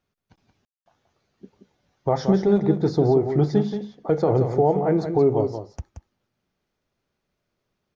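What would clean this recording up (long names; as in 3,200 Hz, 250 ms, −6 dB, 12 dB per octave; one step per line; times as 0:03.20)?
ambience match 0:00.65–0:00.86
echo removal 177 ms −8 dB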